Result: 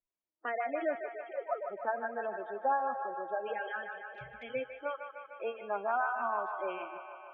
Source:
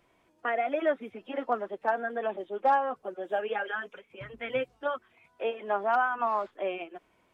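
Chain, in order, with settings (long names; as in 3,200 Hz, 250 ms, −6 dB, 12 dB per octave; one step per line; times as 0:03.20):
0:00.95–0:01.68: three sine waves on the formant tracks
noise reduction from a noise print of the clip's start 29 dB
gate on every frequency bin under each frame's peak −25 dB strong
0:04.05–0:04.55: flanger swept by the level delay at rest 8.7 ms, full sweep at −38.5 dBFS
on a send: delay with a band-pass on its return 151 ms, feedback 73%, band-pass 1,300 Hz, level −6 dB
on the sum: level −6 dB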